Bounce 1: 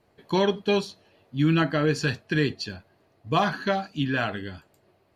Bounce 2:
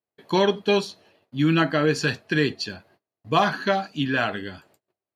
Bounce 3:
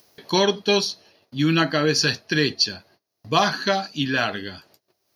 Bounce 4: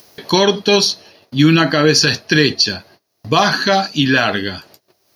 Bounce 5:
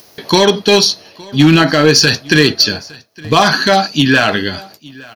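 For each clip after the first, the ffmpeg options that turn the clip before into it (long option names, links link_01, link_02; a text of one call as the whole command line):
ffmpeg -i in.wav -af "agate=range=-30dB:threshold=-58dB:ratio=16:detection=peak,highpass=frequency=190:poles=1,volume=3.5dB" out.wav
ffmpeg -i in.wav -af "equalizer=frequency=5800:width_type=o:width=1.3:gain=11,acompressor=mode=upward:threshold=-38dB:ratio=2.5,aexciter=amount=1:drive=3.5:freq=4300" out.wav
ffmpeg -i in.wav -af "alimiter=level_in=12dB:limit=-1dB:release=50:level=0:latency=1,volume=-1dB" out.wav
ffmpeg -i in.wav -af "asoftclip=type=hard:threshold=-5.5dB,aecho=1:1:863:0.0668,volume=3.5dB" out.wav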